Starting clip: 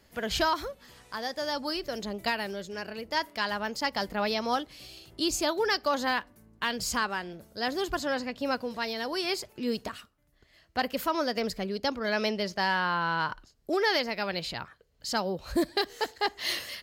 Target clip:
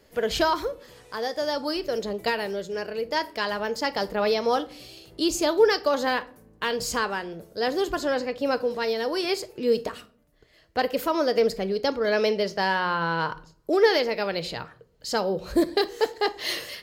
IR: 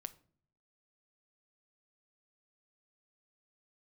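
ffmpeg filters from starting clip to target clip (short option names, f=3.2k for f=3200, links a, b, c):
-filter_complex "[0:a]equalizer=f=460:w=2.1:g=9.5[a];[1:a]atrim=start_sample=2205[b];[a][b]afir=irnorm=-1:irlink=0,volume=5.5dB"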